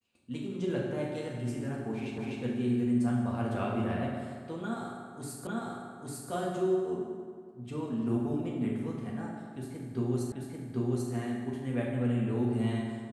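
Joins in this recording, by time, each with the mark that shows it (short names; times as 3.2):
2.18 repeat of the last 0.25 s
5.47 repeat of the last 0.85 s
10.32 repeat of the last 0.79 s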